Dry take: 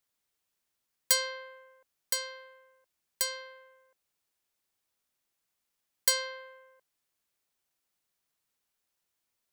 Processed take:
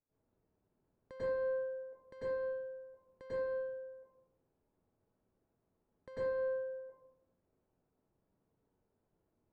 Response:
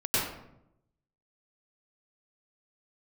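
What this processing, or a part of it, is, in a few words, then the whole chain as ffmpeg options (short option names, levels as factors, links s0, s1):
television next door: -filter_complex "[0:a]acompressor=threshold=0.0141:ratio=4,lowpass=530[s0];[1:a]atrim=start_sample=2205[s1];[s0][s1]afir=irnorm=-1:irlink=0,volume=1.68"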